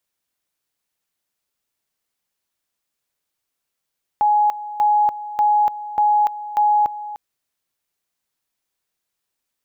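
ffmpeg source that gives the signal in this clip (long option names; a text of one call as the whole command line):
ffmpeg -f lavfi -i "aevalsrc='pow(10,(-12.5-15*gte(mod(t,0.59),0.29))/20)*sin(2*PI*837*t)':duration=2.95:sample_rate=44100" out.wav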